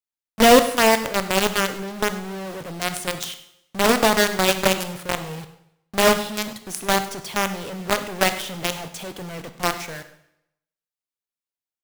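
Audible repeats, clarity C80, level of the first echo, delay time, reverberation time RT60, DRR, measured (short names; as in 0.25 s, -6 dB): 1, 13.5 dB, -18.5 dB, 0.1 s, 0.80 s, 9.5 dB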